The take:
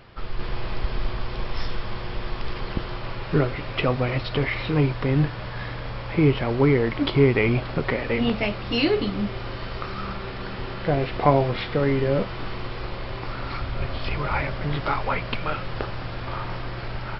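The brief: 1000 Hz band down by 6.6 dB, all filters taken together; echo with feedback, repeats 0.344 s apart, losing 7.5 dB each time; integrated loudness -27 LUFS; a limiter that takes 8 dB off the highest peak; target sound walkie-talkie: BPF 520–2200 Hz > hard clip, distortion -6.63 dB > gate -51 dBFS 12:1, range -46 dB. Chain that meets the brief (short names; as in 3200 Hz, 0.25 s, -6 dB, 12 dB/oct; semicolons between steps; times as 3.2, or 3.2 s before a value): bell 1000 Hz -8 dB; limiter -14.5 dBFS; BPF 520–2200 Hz; feedback echo 0.344 s, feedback 42%, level -7.5 dB; hard clip -33.5 dBFS; gate -51 dBFS 12:1, range -46 dB; gain +11 dB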